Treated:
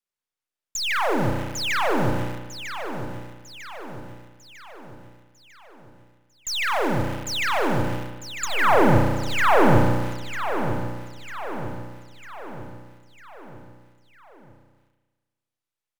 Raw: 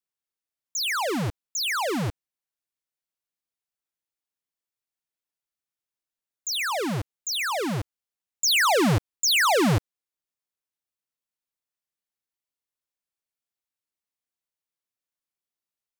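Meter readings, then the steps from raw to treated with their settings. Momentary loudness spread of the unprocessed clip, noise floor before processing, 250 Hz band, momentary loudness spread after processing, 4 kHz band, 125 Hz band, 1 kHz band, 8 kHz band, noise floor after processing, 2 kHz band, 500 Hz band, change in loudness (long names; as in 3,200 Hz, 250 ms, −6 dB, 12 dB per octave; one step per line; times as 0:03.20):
12 LU, below −85 dBFS, +4.0 dB, 21 LU, −3.5 dB, +4.5 dB, +5.5 dB, −5.5 dB, below −85 dBFS, +2.0 dB, +5.5 dB, 0.0 dB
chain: gain on one half-wave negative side −3 dB
spring reverb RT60 1.4 s, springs 33 ms, chirp 80 ms, DRR 0.5 dB
treble cut that deepens with the level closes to 1,600 Hz, closed at −20.5 dBFS
high-shelf EQ 11,000 Hz −4.5 dB
in parallel at −11 dB: bit reduction 5 bits
on the sum: parametric band 200 Hz −3 dB 0.95 octaves
on a send: repeating echo 949 ms, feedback 50%, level −10 dB
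on the sum: level +1.5 dB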